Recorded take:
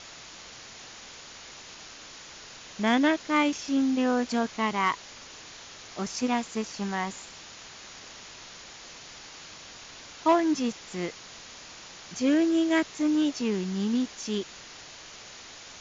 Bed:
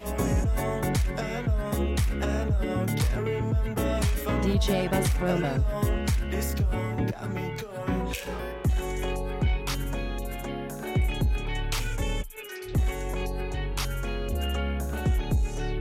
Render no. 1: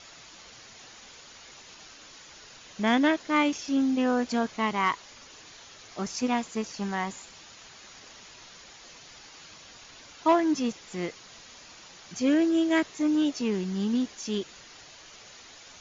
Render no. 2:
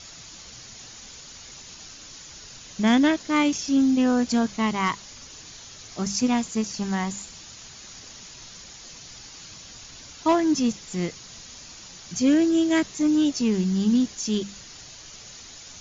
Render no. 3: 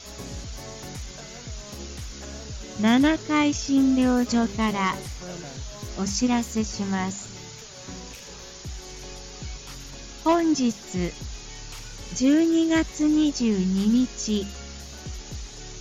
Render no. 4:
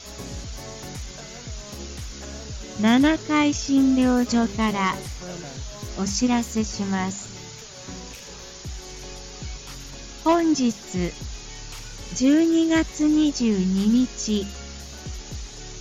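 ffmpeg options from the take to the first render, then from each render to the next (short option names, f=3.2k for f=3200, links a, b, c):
-af "afftdn=nr=6:nf=-46"
-af "bass=f=250:g=12,treble=f=4k:g=10,bandreject=f=50:t=h:w=6,bandreject=f=100:t=h:w=6,bandreject=f=150:t=h:w=6,bandreject=f=200:t=h:w=6"
-filter_complex "[1:a]volume=-12dB[a];[0:a][a]amix=inputs=2:normalize=0"
-af "volume=1.5dB"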